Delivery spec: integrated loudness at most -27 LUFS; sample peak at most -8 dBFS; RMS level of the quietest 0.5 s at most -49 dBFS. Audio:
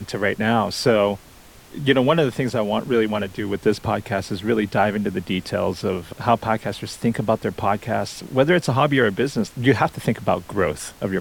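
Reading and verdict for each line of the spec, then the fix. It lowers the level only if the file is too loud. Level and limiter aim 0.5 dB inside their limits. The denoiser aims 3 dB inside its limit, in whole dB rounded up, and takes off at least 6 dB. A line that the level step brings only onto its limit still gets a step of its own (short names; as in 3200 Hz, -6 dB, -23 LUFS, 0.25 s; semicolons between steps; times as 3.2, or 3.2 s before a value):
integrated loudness -21.5 LUFS: fail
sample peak -4.0 dBFS: fail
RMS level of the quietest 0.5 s -46 dBFS: fail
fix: gain -6 dB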